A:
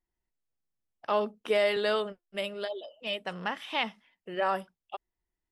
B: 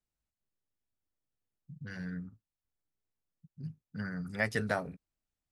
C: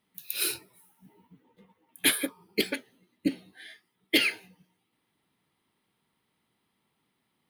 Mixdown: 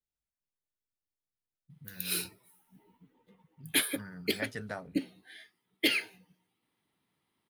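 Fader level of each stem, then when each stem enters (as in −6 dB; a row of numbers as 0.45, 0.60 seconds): muted, −7.5 dB, −4.0 dB; muted, 0.00 s, 1.70 s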